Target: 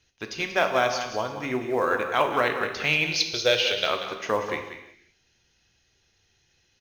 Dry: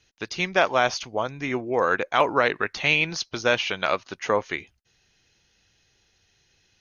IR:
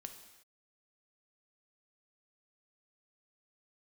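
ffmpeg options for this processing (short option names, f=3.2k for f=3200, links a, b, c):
-filter_complex "[0:a]asettb=1/sr,asplit=3[a][b][c];[a]atrim=end=3.114[d];[b]atrim=start=3.11:end=3.87,asetpts=PTS-STARTPTS,afade=t=in:d=0.004:c=qsin,afade=t=out:st=0.756:d=0.004:c=qsin,equalizer=f=250:t=o:w=1:g=-11,equalizer=f=500:t=o:w=1:g=10,equalizer=f=1k:t=o:w=1:g=-11,equalizer=f=4k:t=o:w=1:g=11[e];[c]atrim=start=3.866[f];[d][e]acrossfade=d=0.004:c1=hsin:c2=qsin[g];[g][f]acrossfade=d=0.004:c1=qsin:c2=hsin,asplit=2[h][i];[i]acrusher=bits=4:mode=log:mix=0:aa=0.000001,volume=-9.5dB[j];[h][j]amix=inputs=2:normalize=0,aecho=1:1:186:0.299[k];[1:a]atrim=start_sample=2205[l];[k][l]afir=irnorm=-1:irlink=0"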